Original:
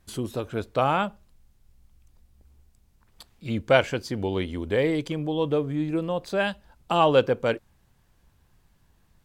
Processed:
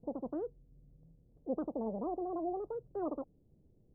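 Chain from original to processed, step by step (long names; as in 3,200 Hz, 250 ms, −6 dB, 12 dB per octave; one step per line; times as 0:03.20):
inverse Chebyshev low-pass filter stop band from 870 Hz, stop band 60 dB
wrong playback speed 33 rpm record played at 78 rpm
level −4.5 dB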